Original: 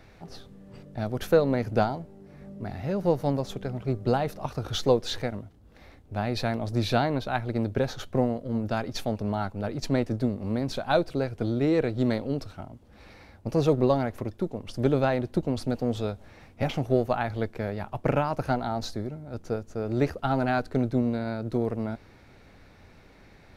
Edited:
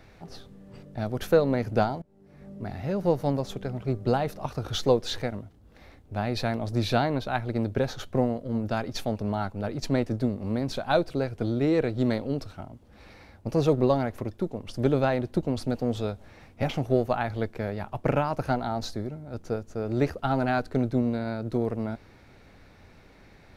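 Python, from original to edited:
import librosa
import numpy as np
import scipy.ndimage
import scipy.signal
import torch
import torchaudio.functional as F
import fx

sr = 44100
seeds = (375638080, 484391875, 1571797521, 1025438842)

y = fx.edit(x, sr, fx.fade_in_from(start_s=2.02, length_s=0.52, floor_db=-23.5), tone=tone)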